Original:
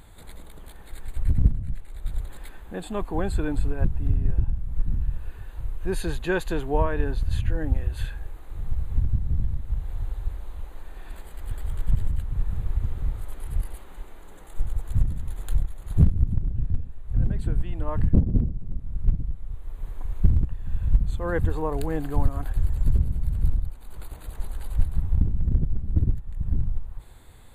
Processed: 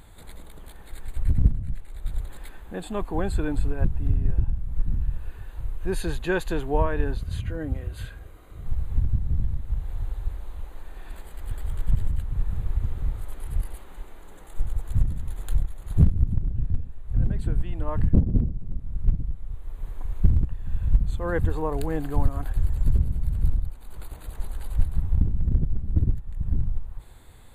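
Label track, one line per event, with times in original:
7.170000	8.660000	notch comb filter 870 Hz

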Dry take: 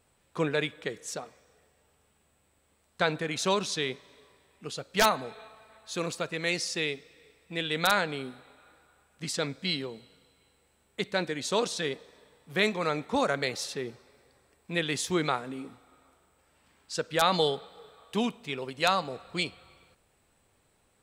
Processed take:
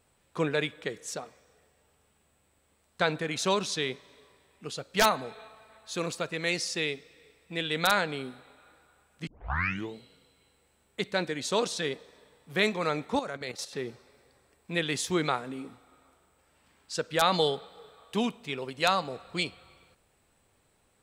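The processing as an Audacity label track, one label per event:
9.270000	9.270000	tape start 0.68 s
13.190000	13.730000	output level in coarse steps of 12 dB

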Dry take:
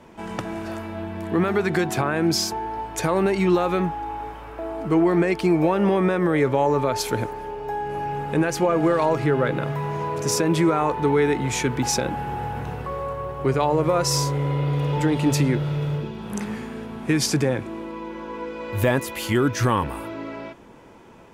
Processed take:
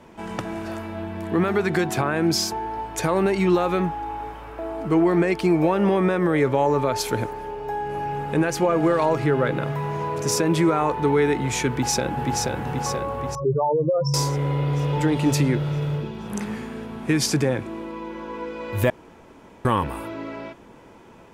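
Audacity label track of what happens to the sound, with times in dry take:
11.690000	12.500000	delay throw 480 ms, feedback 60%, level −3 dB
13.350000	14.140000	expanding power law on the bin magnitudes exponent 3.3
18.900000	19.650000	fill with room tone

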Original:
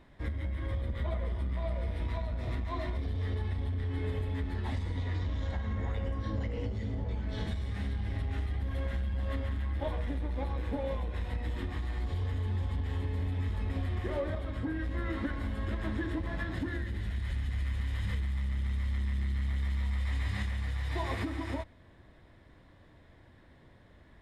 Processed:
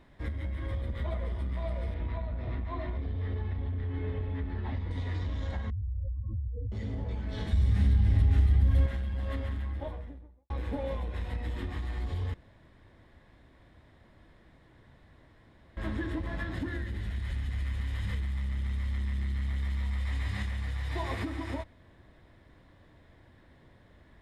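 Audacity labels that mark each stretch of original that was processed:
1.940000	4.910000	high-frequency loss of the air 270 metres
5.700000	6.720000	expanding power law on the bin magnitudes exponent 3.6
7.530000	8.860000	bass and treble bass +11 dB, treble +4 dB
9.440000	10.500000	fade out and dull
12.340000	15.770000	fill with room tone

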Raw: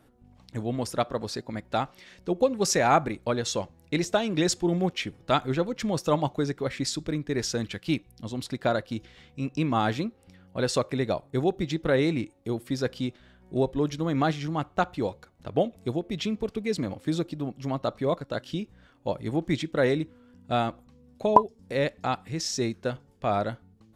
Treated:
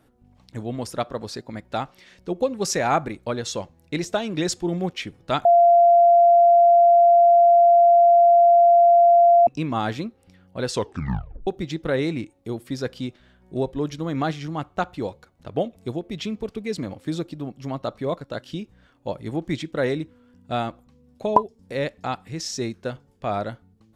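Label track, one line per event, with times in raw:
5.450000	9.470000	beep over 690 Hz −10.5 dBFS
10.710000	10.710000	tape stop 0.76 s

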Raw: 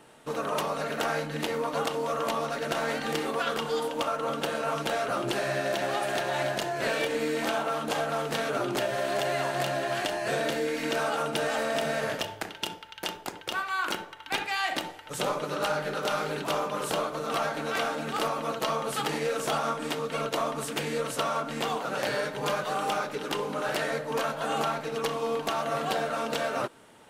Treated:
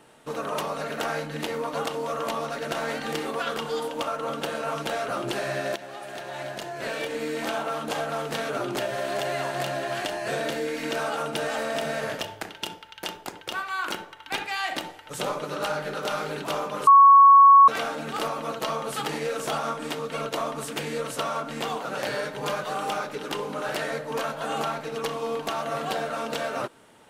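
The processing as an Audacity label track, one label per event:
5.760000	7.620000	fade in, from −12.5 dB
16.870000	17.680000	beep over 1,110 Hz −9 dBFS

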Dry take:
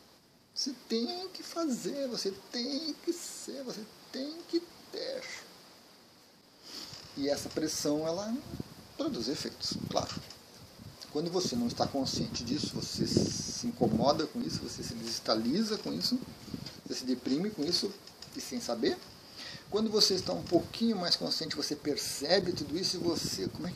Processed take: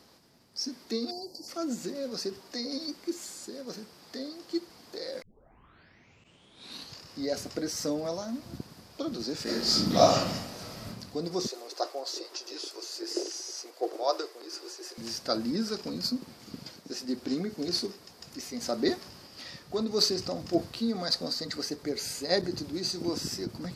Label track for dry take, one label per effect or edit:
1.110000	1.480000	time-frequency box erased 1,000–4,100 Hz
5.220000	5.220000	tape start 1.82 s
9.430000	10.860000	thrown reverb, RT60 0.81 s, DRR −11.5 dB
11.470000	14.980000	elliptic high-pass filter 350 Hz
16.200000	17.090000	low-shelf EQ 110 Hz −11 dB
18.610000	19.270000	clip gain +3 dB

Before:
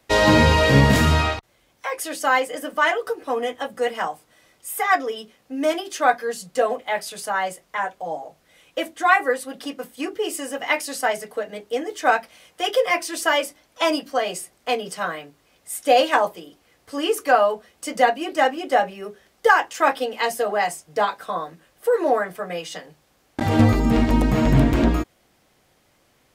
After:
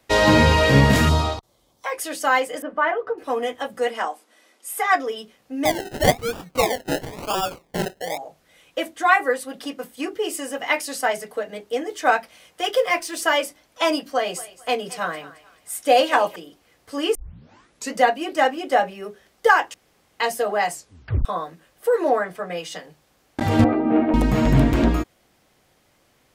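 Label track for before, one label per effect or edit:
1.090000	1.860000	flat-topped bell 2,000 Hz −11 dB 1.2 octaves
2.620000	3.180000	low-pass filter 1,600 Hz
3.840000	4.950000	linear-phase brick-wall band-pass 200–13,000 Hz
5.650000	8.180000	sample-and-hold swept by an LFO 30×, swing 60% 1 Hz
12.610000	13.190000	mu-law and A-law mismatch coded by A
14.130000	16.360000	feedback echo with a high-pass in the loop 220 ms, feedback 35%, high-pass 530 Hz, level −16.5 dB
17.150000	17.150000	tape start 0.81 s
19.740000	20.200000	fill with room tone
20.730000	20.730000	tape stop 0.52 s
22.090000	22.570000	high-shelf EQ 12,000 Hz −11.5 dB
23.640000	24.140000	loudspeaker in its box 290–2,200 Hz, peaks and dips at 310 Hz +8 dB, 690 Hz +7 dB, 1,000 Hz −5 dB, 1,900 Hz −6 dB

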